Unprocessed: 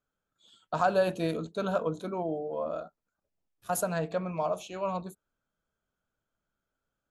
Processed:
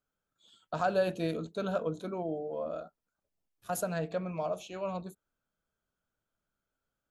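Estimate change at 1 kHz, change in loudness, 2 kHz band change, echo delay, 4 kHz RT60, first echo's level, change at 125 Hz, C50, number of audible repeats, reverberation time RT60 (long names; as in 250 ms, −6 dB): −5.0 dB, −3.0 dB, −3.0 dB, no echo audible, no reverb audible, no echo audible, −2.0 dB, no reverb audible, no echo audible, no reverb audible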